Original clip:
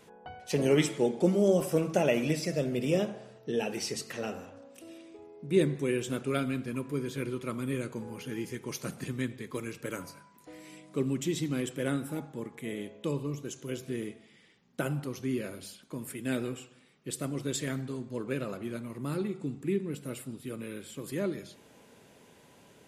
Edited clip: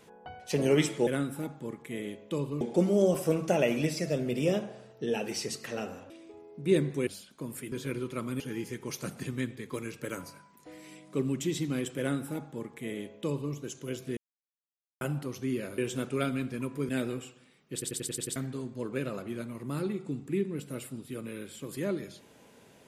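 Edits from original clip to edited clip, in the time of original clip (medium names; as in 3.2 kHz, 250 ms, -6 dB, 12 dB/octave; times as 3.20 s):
4.56–4.95 s: delete
5.92–7.03 s: swap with 15.59–16.24 s
7.71–8.21 s: delete
11.80–13.34 s: copy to 1.07 s
13.98–14.82 s: mute
17.08 s: stutter in place 0.09 s, 7 plays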